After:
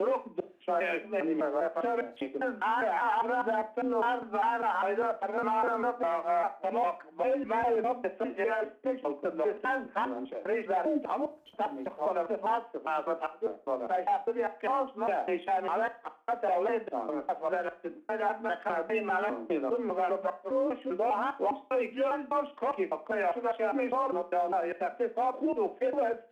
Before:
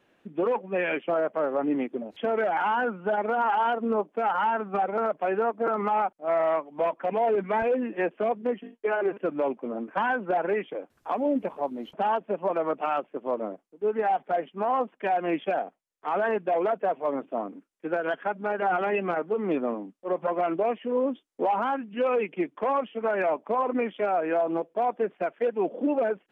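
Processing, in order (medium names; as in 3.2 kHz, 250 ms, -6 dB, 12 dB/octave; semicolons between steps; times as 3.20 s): slices played last to first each 201 ms, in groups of 3; in parallel at -6.5 dB: crossover distortion -42.5 dBFS; on the sum: frequency shift +31 Hz; Schroeder reverb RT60 0.36 s, combs from 26 ms, DRR 11.5 dB; trim -7 dB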